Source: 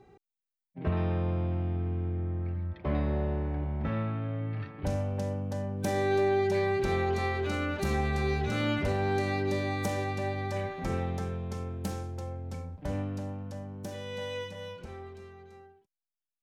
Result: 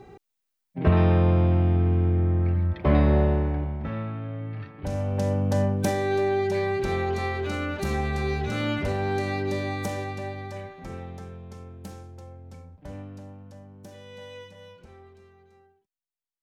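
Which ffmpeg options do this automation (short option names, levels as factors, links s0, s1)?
-af "volume=11.9,afade=t=out:st=3.18:d=0.63:silence=0.316228,afade=t=in:st=4.88:d=0.75:silence=0.266073,afade=t=out:st=5.63:d=0.34:silence=0.334965,afade=t=out:st=9.68:d=1.08:silence=0.398107"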